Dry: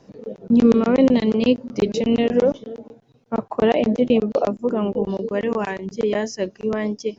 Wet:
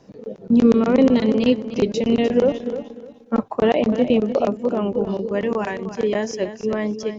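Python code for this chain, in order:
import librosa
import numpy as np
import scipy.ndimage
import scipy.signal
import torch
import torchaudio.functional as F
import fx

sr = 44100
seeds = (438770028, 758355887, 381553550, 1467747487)

y = fx.comb(x, sr, ms=3.8, depth=0.94, at=(2.52, 3.43))
y = fx.echo_feedback(y, sr, ms=302, feedback_pct=24, wet_db=-11.5)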